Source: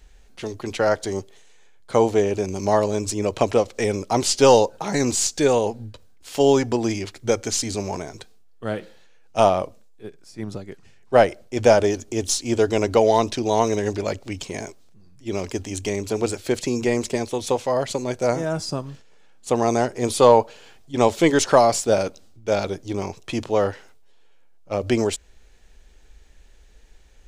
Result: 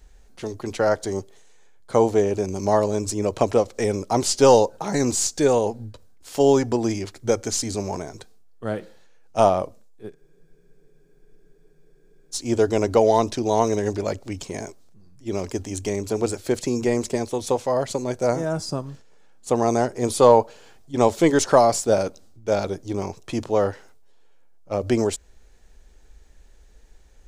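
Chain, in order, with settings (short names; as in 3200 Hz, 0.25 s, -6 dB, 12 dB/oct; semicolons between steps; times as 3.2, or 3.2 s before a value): bell 2800 Hz -6 dB 1.3 oct; spectral freeze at 10.16, 2.18 s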